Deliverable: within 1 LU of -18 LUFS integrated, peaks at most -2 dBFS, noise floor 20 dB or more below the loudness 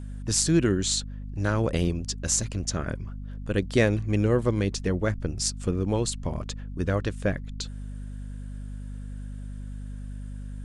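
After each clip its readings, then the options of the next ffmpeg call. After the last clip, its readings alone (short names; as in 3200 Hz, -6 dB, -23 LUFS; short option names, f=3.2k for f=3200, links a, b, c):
hum 50 Hz; harmonics up to 250 Hz; hum level -34 dBFS; loudness -27.0 LUFS; peak -7.0 dBFS; loudness target -18.0 LUFS
-> -af "bandreject=f=50:t=h:w=4,bandreject=f=100:t=h:w=4,bandreject=f=150:t=h:w=4,bandreject=f=200:t=h:w=4,bandreject=f=250:t=h:w=4"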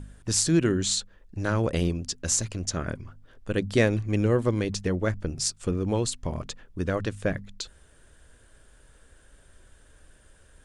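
hum none; loudness -27.0 LUFS; peak -7.0 dBFS; loudness target -18.0 LUFS
-> -af "volume=9dB,alimiter=limit=-2dB:level=0:latency=1"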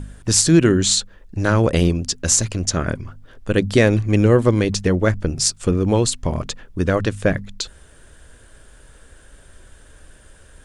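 loudness -18.5 LUFS; peak -2.0 dBFS; noise floor -48 dBFS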